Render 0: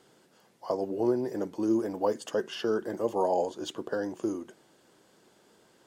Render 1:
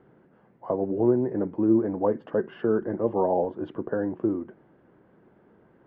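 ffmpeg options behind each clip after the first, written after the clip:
-af "lowpass=f=2k:w=0.5412,lowpass=f=2k:w=1.3066,lowshelf=f=300:g=12"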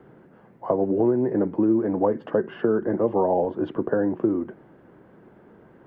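-filter_complex "[0:a]acrossover=split=130|1800[a][b][c];[a]acompressor=threshold=-49dB:ratio=4[d];[b]acompressor=threshold=-25dB:ratio=4[e];[c]acompressor=threshold=-54dB:ratio=4[f];[d][e][f]amix=inputs=3:normalize=0,volume=7dB"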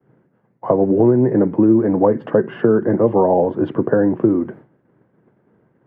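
-af "agate=range=-33dB:threshold=-40dB:ratio=3:detection=peak,equalizer=f=125:t=o:w=1:g=11,equalizer=f=250:t=o:w=1:g=4,equalizer=f=500:t=o:w=1:g=4,equalizer=f=1k:t=o:w=1:g=3,equalizer=f=2k:t=o:w=1:g=5,volume=1.5dB"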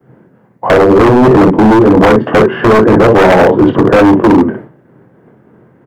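-af "aecho=1:1:23|60:0.501|0.562,acontrast=73,aeval=exprs='0.473*(abs(mod(val(0)/0.473+3,4)-2)-1)':c=same,volume=5.5dB"

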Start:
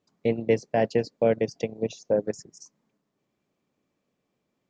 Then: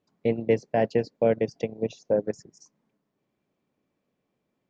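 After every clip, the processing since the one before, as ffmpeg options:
-af "highshelf=f=5.8k:g=-12,bandreject=f=1.2k:w=25"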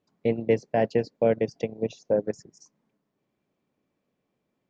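-af anull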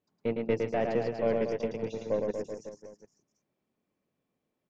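-af "aeval=exprs='0.355*(cos(1*acos(clip(val(0)/0.355,-1,1)))-cos(1*PI/2))+0.0158*(cos(6*acos(clip(val(0)/0.355,-1,1)))-cos(6*PI/2))':c=same,aecho=1:1:110|236.5|382|549.3|741.7:0.631|0.398|0.251|0.158|0.1,volume=-6.5dB"

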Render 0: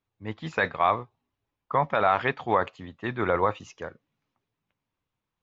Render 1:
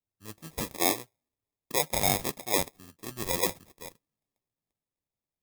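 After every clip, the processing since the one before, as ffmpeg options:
-af "adynamicequalizer=threshold=0.02:dfrequency=920:dqfactor=1:tfrequency=920:tqfactor=1:attack=5:release=100:ratio=0.375:range=3:mode=boostabove:tftype=bell,acrusher=samples=30:mix=1:aa=0.000001,crystalizer=i=3:c=0,volume=-11.5dB"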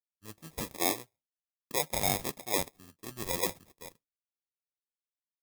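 -af "agate=range=-33dB:threshold=-52dB:ratio=3:detection=peak,volume=-3.5dB"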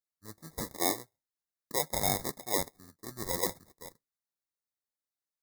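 -af "asuperstop=centerf=2800:order=20:qfactor=2.1"

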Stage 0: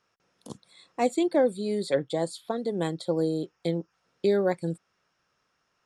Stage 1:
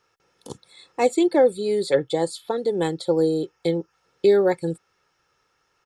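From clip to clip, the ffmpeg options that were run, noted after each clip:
-af "aecho=1:1:2.3:0.48,volume=4.5dB"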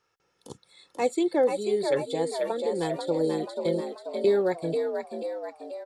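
-filter_complex "[0:a]asplit=8[a][b][c][d][e][f][g][h];[b]adelay=486,afreqshift=57,volume=-5.5dB[i];[c]adelay=972,afreqshift=114,volume=-11dB[j];[d]adelay=1458,afreqshift=171,volume=-16.5dB[k];[e]adelay=1944,afreqshift=228,volume=-22dB[l];[f]adelay=2430,afreqshift=285,volume=-27.6dB[m];[g]adelay=2916,afreqshift=342,volume=-33.1dB[n];[h]adelay=3402,afreqshift=399,volume=-38.6dB[o];[a][i][j][k][l][m][n][o]amix=inputs=8:normalize=0,volume=-6dB"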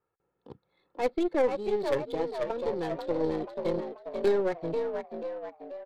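-af "aeval=exprs='0.237*(cos(1*acos(clip(val(0)/0.237,-1,1)))-cos(1*PI/2))+0.0473*(cos(2*acos(clip(val(0)/0.237,-1,1)))-cos(2*PI/2))+0.0422*(cos(4*acos(clip(val(0)/0.237,-1,1)))-cos(4*PI/2))':c=same,aresample=11025,aresample=44100,adynamicsmooth=sensitivity=6.5:basefreq=1.1k,volume=-3dB"

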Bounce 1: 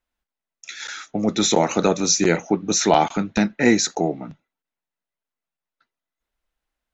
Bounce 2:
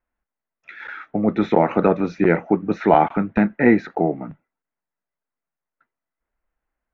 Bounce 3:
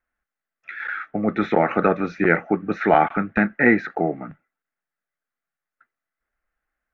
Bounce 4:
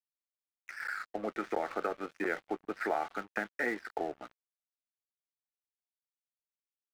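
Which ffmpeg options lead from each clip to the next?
-af "lowpass=f=2.1k:w=0.5412,lowpass=f=2.1k:w=1.3066,volume=2dB"
-af "equalizer=f=1.6k:t=o:w=1.4:g=10,bandreject=f=970:w=5.7,volume=-3.5dB"
-filter_complex "[0:a]acrossover=split=300 2500:gain=0.0708 1 0.2[a][b][c];[a][b][c]amix=inputs=3:normalize=0,acompressor=threshold=-26dB:ratio=3,aeval=exprs='sgn(val(0))*max(abs(val(0))-0.00794,0)':c=same,volume=-5dB"

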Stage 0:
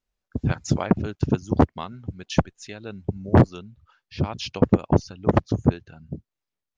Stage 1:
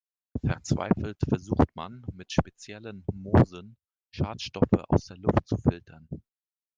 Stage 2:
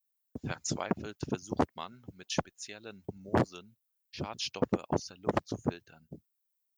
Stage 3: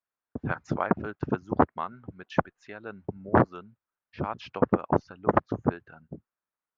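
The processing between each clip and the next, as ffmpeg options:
-af "agate=range=-40dB:threshold=-45dB:ratio=16:detection=peak,volume=-4dB"
-af "aemphasis=mode=production:type=bsi,volume=-3.5dB"
-af "lowpass=f=1.4k:t=q:w=1.8,volume=5.5dB"

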